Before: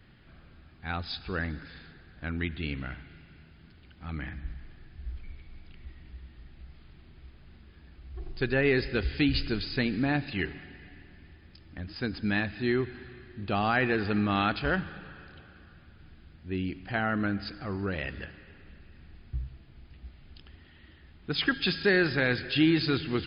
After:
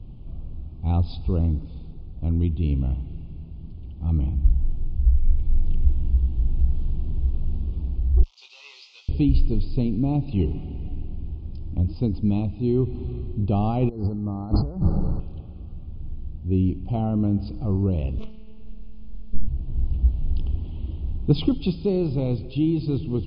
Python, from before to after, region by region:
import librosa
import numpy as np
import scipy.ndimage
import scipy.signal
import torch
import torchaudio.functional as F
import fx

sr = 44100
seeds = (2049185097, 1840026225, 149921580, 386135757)

y = fx.chain(x, sr, fx.delta_mod(bps=32000, step_db=-36.5),
    fx.bessel_highpass(hz=2500.0, order=4),
    fx.doubler(ms=21.0, db=-6), at=(8.23, 9.09))
y = fx.chain(y, sr, fx.brickwall_bandstop(low_hz=2000.0, high_hz=4100.0),
    fx.over_compress(threshold_db=-40.0, ratio=-1.0), at=(13.89, 15.2))
y = fx.chain(y, sr, fx.high_shelf(hz=2800.0, db=10.0),
    fx.robotise(hz=217.0),
    fx.doppler_dist(depth_ms=0.64), at=(18.18, 19.48))
y = scipy.signal.sosfilt(scipy.signal.cheby1(2, 1.0, [980.0, 2900.0], 'bandstop', fs=sr, output='sos'), y)
y = fx.tilt_eq(y, sr, slope=-4.5)
y = fx.rider(y, sr, range_db=10, speed_s=0.5)